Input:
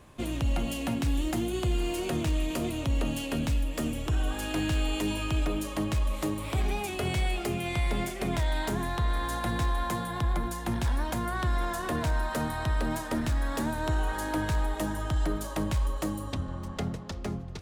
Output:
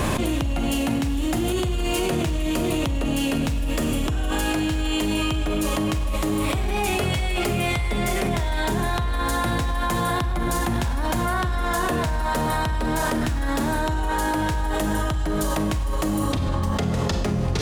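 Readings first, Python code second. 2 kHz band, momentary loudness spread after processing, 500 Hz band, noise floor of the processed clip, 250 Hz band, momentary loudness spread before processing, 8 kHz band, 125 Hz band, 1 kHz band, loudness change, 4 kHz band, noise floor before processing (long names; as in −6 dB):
+8.0 dB, 1 LU, +7.5 dB, −24 dBFS, +7.5 dB, 3 LU, +8.5 dB, +5.5 dB, +8.5 dB, +6.5 dB, +8.0 dB, −37 dBFS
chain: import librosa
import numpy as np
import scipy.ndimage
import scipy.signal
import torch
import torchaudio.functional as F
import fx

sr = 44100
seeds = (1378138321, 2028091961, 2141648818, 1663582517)

y = fx.rev_schroeder(x, sr, rt60_s=0.79, comb_ms=32, drr_db=6.0)
y = fx.env_flatten(y, sr, amount_pct=100)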